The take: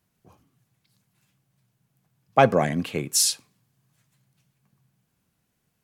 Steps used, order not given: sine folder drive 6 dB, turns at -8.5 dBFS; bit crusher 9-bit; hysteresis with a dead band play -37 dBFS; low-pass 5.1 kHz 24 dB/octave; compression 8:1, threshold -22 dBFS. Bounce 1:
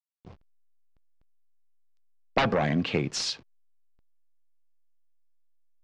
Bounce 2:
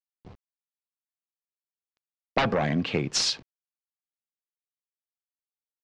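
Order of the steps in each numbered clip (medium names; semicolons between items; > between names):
sine folder > bit crusher > hysteresis with a dead band > compression > low-pass; sine folder > hysteresis with a dead band > bit crusher > low-pass > compression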